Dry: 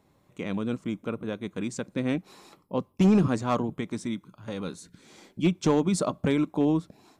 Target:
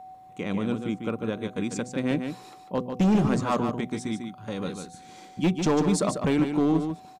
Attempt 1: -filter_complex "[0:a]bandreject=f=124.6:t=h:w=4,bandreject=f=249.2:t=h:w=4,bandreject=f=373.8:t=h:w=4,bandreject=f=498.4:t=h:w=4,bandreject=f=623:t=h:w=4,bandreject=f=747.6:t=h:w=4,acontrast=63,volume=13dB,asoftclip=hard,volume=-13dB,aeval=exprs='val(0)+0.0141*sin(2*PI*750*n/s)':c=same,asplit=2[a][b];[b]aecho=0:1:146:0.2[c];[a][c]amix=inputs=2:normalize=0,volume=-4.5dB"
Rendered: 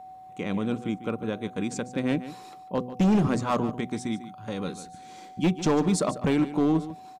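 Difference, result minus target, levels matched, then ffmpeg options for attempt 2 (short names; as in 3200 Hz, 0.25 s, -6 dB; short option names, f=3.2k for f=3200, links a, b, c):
echo-to-direct -7 dB
-filter_complex "[0:a]bandreject=f=124.6:t=h:w=4,bandreject=f=249.2:t=h:w=4,bandreject=f=373.8:t=h:w=4,bandreject=f=498.4:t=h:w=4,bandreject=f=623:t=h:w=4,bandreject=f=747.6:t=h:w=4,acontrast=63,volume=13dB,asoftclip=hard,volume=-13dB,aeval=exprs='val(0)+0.0141*sin(2*PI*750*n/s)':c=same,asplit=2[a][b];[b]aecho=0:1:146:0.447[c];[a][c]amix=inputs=2:normalize=0,volume=-4.5dB"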